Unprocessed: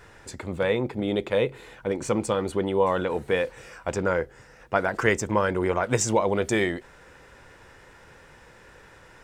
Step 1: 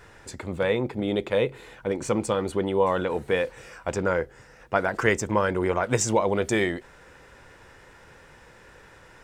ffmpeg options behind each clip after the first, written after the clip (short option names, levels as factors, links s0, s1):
-af anull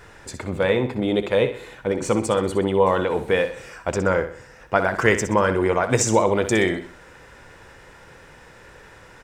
-af "aecho=1:1:63|126|189|252:0.299|0.116|0.0454|0.0177,volume=1.58"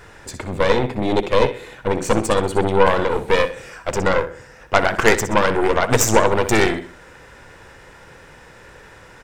-af "aeval=exprs='0.891*(cos(1*acos(clip(val(0)/0.891,-1,1)))-cos(1*PI/2))+0.141*(cos(8*acos(clip(val(0)/0.891,-1,1)))-cos(8*PI/2))':c=same,volume=1.33"